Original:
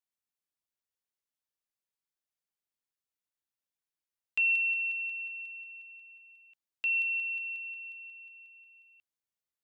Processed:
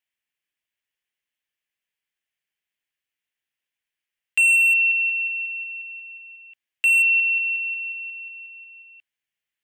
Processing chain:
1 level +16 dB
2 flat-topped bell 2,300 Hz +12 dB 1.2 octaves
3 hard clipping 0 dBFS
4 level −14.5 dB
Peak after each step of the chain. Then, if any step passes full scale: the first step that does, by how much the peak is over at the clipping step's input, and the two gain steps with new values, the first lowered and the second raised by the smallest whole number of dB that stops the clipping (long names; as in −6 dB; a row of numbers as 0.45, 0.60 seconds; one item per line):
−7.0, +5.5, 0.0, −14.5 dBFS
step 2, 5.5 dB
step 1 +10 dB, step 4 −8.5 dB